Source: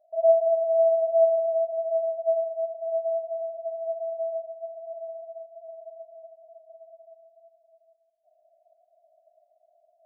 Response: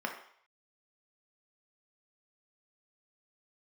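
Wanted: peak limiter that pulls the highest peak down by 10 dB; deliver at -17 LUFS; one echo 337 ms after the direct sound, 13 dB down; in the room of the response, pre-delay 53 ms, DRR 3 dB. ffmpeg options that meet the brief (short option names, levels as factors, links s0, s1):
-filter_complex "[0:a]alimiter=limit=0.0944:level=0:latency=1,aecho=1:1:337:0.224,asplit=2[s0][s1];[1:a]atrim=start_sample=2205,adelay=53[s2];[s1][s2]afir=irnorm=-1:irlink=0,volume=0.376[s3];[s0][s3]amix=inputs=2:normalize=0,volume=2.37"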